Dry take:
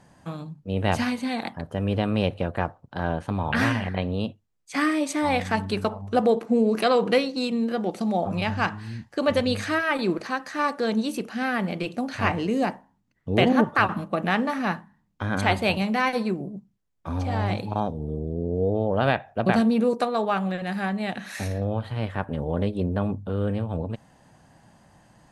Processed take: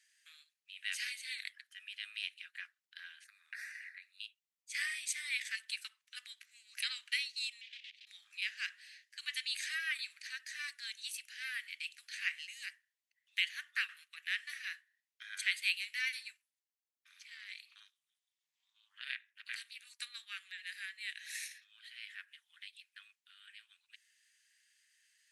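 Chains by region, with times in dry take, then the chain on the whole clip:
3.24–4.20 s: static phaser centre 630 Hz, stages 8 + compression 12:1, threshold -27 dBFS
7.61–8.07 s: block-companded coder 3-bit + level held to a coarse grid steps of 9 dB + Butterworth band-pass 2.9 kHz, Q 1.8
16.37–19.87 s: high-pass 620 Hz + AM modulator 300 Hz, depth 70%
whole clip: steep high-pass 1.8 kHz 48 dB/octave; dynamic bell 9 kHz, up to +5 dB, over -55 dBFS, Q 1.6; trim -5.5 dB

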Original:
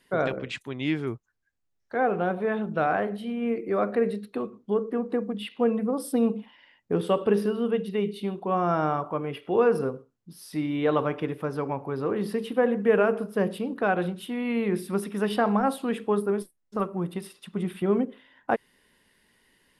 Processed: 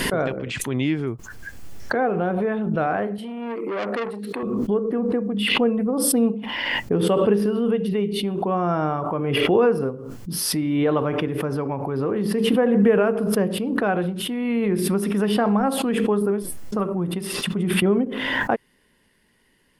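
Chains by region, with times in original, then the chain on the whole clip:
3.18–4.43 s: high-pass 260 Hz + peaking EQ 8.4 kHz +3.5 dB 0.3 oct + transformer saturation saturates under 2 kHz
whole clip: bass shelf 440 Hz +5 dB; band-stop 3.8 kHz, Q 16; swell ahead of each attack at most 25 dB/s

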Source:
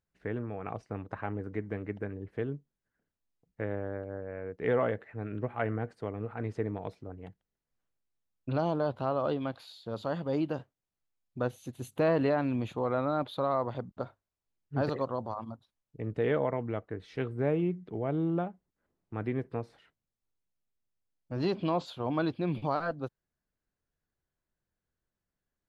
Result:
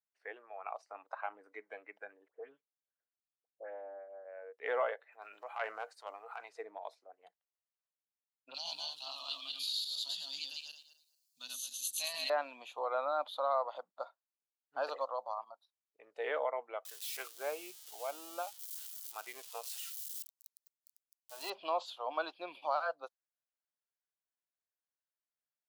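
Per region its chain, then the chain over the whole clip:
2.28–4.25 s: tape spacing loss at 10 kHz 28 dB + phase dispersion highs, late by 101 ms, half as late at 1.8 kHz
5.12–6.49 s: transient shaper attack -8 dB, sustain +2 dB + treble shelf 2.1 kHz +7.5 dB
8.54–12.30 s: backward echo that repeats 109 ms, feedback 43%, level -1 dB + FFT filter 250 Hz 0 dB, 360 Hz -29 dB, 860 Hz -16 dB, 1.4 kHz -17 dB, 2.7 kHz +4 dB, 3.9 kHz +15 dB
16.85–21.50 s: zero-crossing glitches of -32 dBFS + bass shelf 310 Hz -9 dB
whole clip: spectral noise reduction 10 dB; high-pass 570 Hz 24 dB/octave; trim -1 dB

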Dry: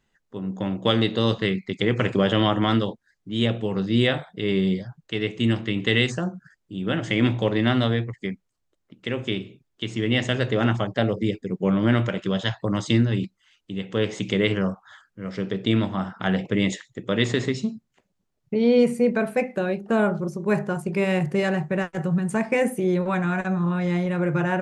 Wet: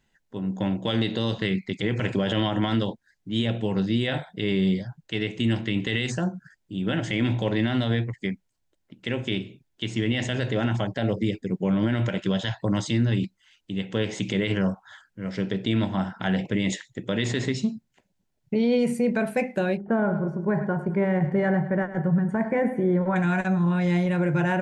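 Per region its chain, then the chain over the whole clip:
19.77–23.16 s: Savitzky-Golay filter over 41 samples + feedback delay 105 ms, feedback 42%, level -13.5 dB
whole clip: peaking EQ 440 Hz -3.5 dB 0.61 oct; band-stop 1.2 kHz, Q 5.1; peak limiter -16 dBFS; trim +1.5 dB

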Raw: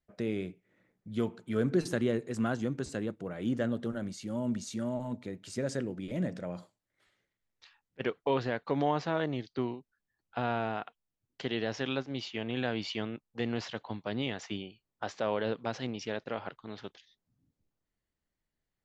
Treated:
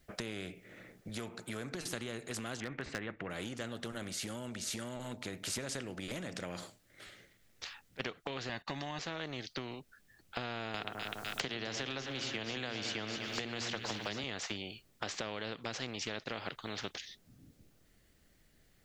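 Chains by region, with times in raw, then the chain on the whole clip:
1.09–1.75 s: high-pass 55 Hz + peaking EQ 3.1 kHz -9.5 dB 0.25 oct
2.60–3.30 s: resonant low-pass 1.9 kHz, resonance Q 4.5 + hard clipper -21.5 dBFS
8.49–8.99 s: comb 1.1 ms, depth 100% + gate -48 dBFS, range -13 dB
10.74–14.24 s: hum notches 60/120/180/240/300/360/420 Hz + two-band feedback delay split 1.6 kHz, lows 103 ms, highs 252 ms, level -12.5 dB + three bands compressed up and down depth 100%
whole clip: peaking EQ 960 Hz -8 dB 0.54 oct; compression, threshold -40 dBFS; spectrum-flattening compressor 2:1; trim +7 dB

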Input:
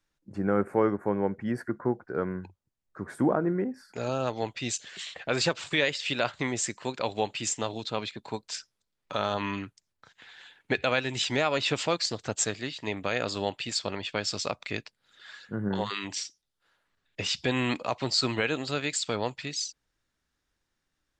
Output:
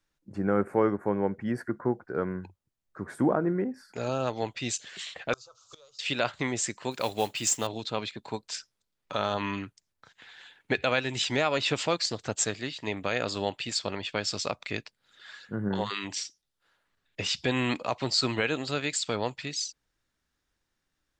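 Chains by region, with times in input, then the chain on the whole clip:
5.33–5.99 s: jump at every zero crossing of -35.5 dBFS + FFT filter 130 Hz 0 dB, 180 Hz -29 dB, 260 Hz -22 dB, 480 Hz +2 dB, 880 Hz -2 dB, 1.3 kHz +13 dB, 1.8 kHz -27 dB, 3.6 kHz 0 dB, 6.5 kHz +14 dB, 11 kHz -23 dB + inverted gate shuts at -21 dBFS, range -30 dB
6.91–7.67 s: treble shelf 7.5 kHz +10 dB + modulation noise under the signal 20 dB
whole clip: none

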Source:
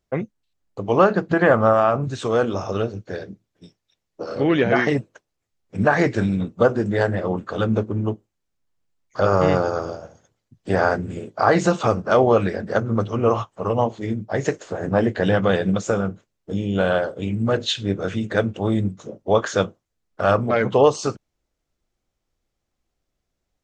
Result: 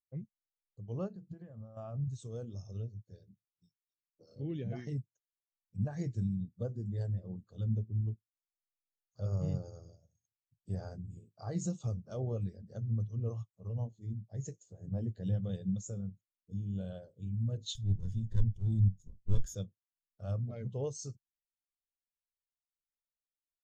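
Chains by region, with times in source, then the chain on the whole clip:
1.08–1.77 s: compression, threshold -22 dBFS + doubling 22 ms -13 dB
17.75–19.55 s: comb filter that takes the minimum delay 0.6 ms + bass shelf 93 Hz +11 dB
whole clip: FFT filter 130 Hz 0 dB, 280 Hz -11 dB, 1.5 kHz -19 dB, 6.8 kHz +6 dB; spectral contrast expander 1.5:1; trim -5 dB

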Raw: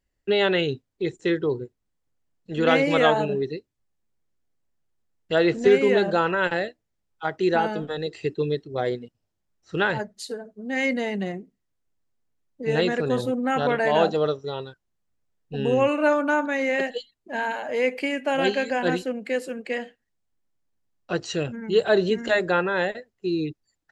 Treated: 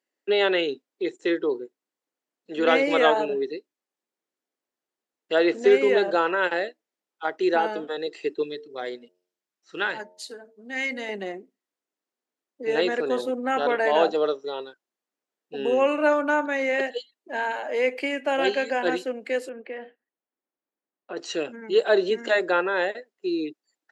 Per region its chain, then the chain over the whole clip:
8.43–11.09 s: peaking EQ 510 Hz -7.5 dB 2.1 oct + de-hum 89.67 Hz, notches 10
19.49–21.17 s: compression 2:1, threshold -31 dBFS + distance through air 420 m
whole clip: high-pass 280 Hz 24 dB/octave; treble shelf 7.7 kHz -4.5 dB

